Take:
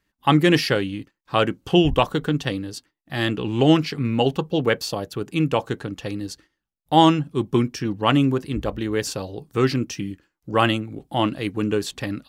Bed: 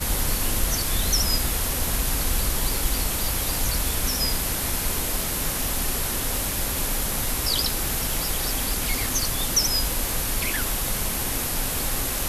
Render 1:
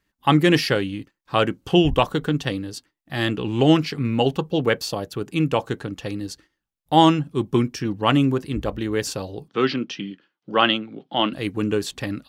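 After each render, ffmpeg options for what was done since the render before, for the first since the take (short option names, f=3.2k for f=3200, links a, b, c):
-filter_complex "[0:a]asettb=1/sr,asplit=3[a][b][c];[a]atrim=end=9.484[d];[b]atrim=start=9.48:end=11.33,asetpts=PTS-STARTPTS,afade=t=in:d=0.004:c=qsin,afade=t=out:st=1.846:d=0.004:c=qsin,highpass=f=170:w=0.5412,highpass=f=170:w=1.3066,equalizer=f=310:t=q:w=4:g=-3,equalizer=f=1.4k:t=q:w=4:g=3,equalizer=f=3.2k:t=q:w=4:g=8,lowpass=f=4.8k:w=0.5412,lowpass=f=4.8k:w=1.3066[e];[c]atrim=start=11.326[f];[d][e]acrossfade=d=0.004:c1=hsin:c2=qsin[g];[g][f]acrossfade=d=0.004:c1=qsin:c2=hsin"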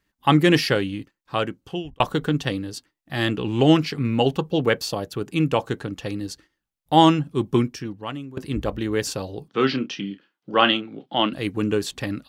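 -filter_complex "[0:a]asettb=1/sr,asplit=3[a][b][c];[a]atrim=end=9.514[d];[b]atrim=start=9.51:end=11.06,asetpts=PTS-STARTPTS,afade=t=in:d=0.004:c=qsin,afade=t=out:st=1.546:d=0.004:c=qsin,asplit=2[e][f];[f]adelay=30,volume=-10dB[g];[e][g]amix=inputs=2:normalize=0,atrim=end_sample=68355[h];[c]atrim=start=11.056[i];[d][h]acrossfade=d=0.004:c1=hsin:c2=qsin[j];[j][i]acrossfade=d=0.004:c1=qsin:c2=hsin,asplit=3[k][l][m];[k]atrim=end=2,asetpts=PTS-STARTPTS,afade=t=out:st=0.99:d=1.01[n];[l]atrim=start=2:end=8.37,asetpts=PTS-STARTPTS,afade=t=in:d=0.004:c=hsin,afade=t=out:st=5.59:d=0.78:c=qua:silence=0.112202[o];[m]atrim=start=8.37,asetpts=PTS-STARTPTS,afade=t=in:d=0.004:c=hsin:silence=0.112202[p];[n][o][p]concat=n=3:v=0:a=1"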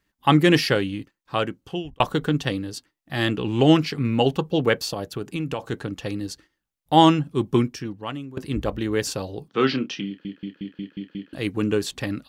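-filter_complex "[0:a]asplit=3[a][b][c];[a]afade=t=out:st=4.87:d=0.02[d];[b]acompressor=threshold=-23dB:ratio=6:attack=3.2:release=140:knee=1:detection=peak,afade=t=in:st=4.87:d=0.02,afade=t=out:st=5.71:d=0.02[e];[c]afade=t=in:st=5.71:d=0.02[f];[d][e][f]amix=inputs=3:normalize=0,asplit=8[g][h][i][j][k][l][m][n];[g]atrim=end=10.252[o];[h]atrim=start=10.068:end=10.252[p];[i]atrim=start=10.068:end=10.252[q];[j]atrim=start=10.068:end=10.252[r];[k]atrim=start=10.068:end=10.252[s];[l]atrim=start=10.068:end=10.252[t];[m]atrim=start=10.068:end=10.252[u];[n]atrim=start=11.328[v];[o][p]acrossfade=d=0.004:c1=hsin:c2=hsin[w];[w][q]acrossfade=d=0.004:c1=hsin:c2=hsin[x];[x][r]acrossfade=d=0.004:c1=hsin:c2=hsin[y];[y][s]acrossfade=d=0.004:c1=hsin:c2=hsin[z];[z][t]acrossfade=d=0.004:c1=hsin:c2=hsin[aa];[aa][u]acrossfade=d=0.004:c1=hsin:c2=hsin[ab];[ab][v]acrossfade=d=0.004:c1=hsin:c2=hsin"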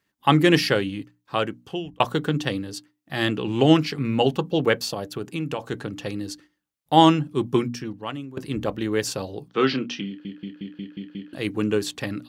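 -af "highpass=94,bandreject=f=60:t=h:w=6,bandreject=f=120:t=h:w=6,bandreject=f=180:t=h:w=6,bandreject=f=240:t=h:w=6,bandreject=f=300:t=h:w=6"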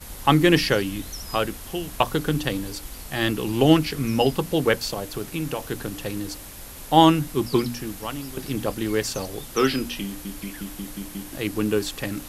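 -filter_complex "[1:a]volume=-14dB[a];[0:a][a]amix=inputs=2:normalize=0"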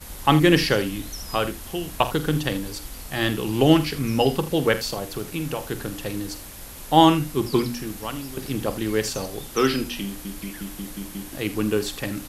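-af "aecho=1:1:46|79:0.211|0.158"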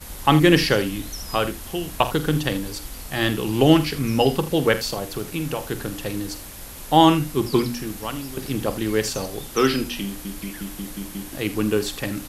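-af "volume=1.5dB,alimiter=limit=-2dB:level=0:latency=1"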